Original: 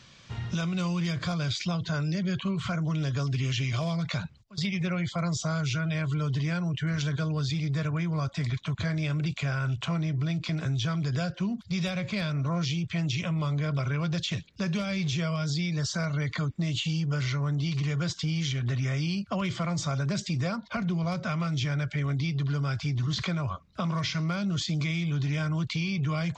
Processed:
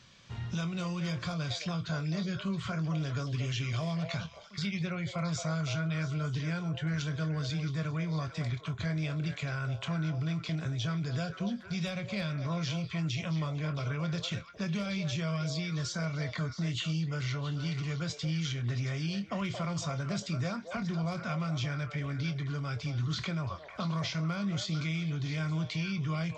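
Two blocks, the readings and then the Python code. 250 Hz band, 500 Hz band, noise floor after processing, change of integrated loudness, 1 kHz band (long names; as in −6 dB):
−4.5 dB, −3.5 dB, −47 dBFS, −4.5 dB, −4.0 dB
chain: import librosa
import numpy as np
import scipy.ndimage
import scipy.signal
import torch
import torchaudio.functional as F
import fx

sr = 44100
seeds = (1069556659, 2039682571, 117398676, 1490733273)

y = fx.doubler(x, sr, ms=25.0, db=-11)
y = fx.echo_stepped(y, sr, ms=224, hz=610.0, octaves=1.4, feedback_pct=70, wet_db=-4)
y = y * 10.0 ** (-5.0 / 20.0)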